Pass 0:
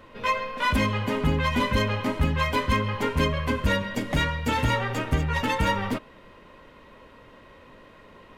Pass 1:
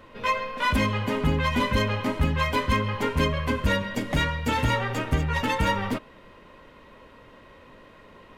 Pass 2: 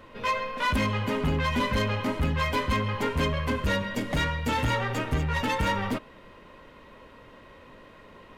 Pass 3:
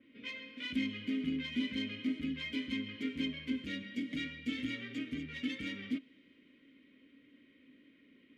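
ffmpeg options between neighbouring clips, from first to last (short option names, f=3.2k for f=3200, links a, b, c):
-af anull
-af "asoftclip=type=tanh:threshold=-19dB"
-filter_complex "[0:a]asplit=3[a][b][c];[a]bandpass=f=270:t=q:w=8,volume=0dB[d];[b]bandpass=f=2.29k:t=q:w=8,volume=-6dB[e];[c]bandpass=f=3.01k:t=q:w=8,volume=-9dB[f];[d][e][f]amix=inputs=3:normalize=0,adynamicequalizer=threshold=0.00126:dfrequency=3500:dqfactor=0.7:tfrequency=3500:tqfactor=0.7:attack=5:release=100:ratio=0.375:range=4:mode=boostabove:tftype=highshelf"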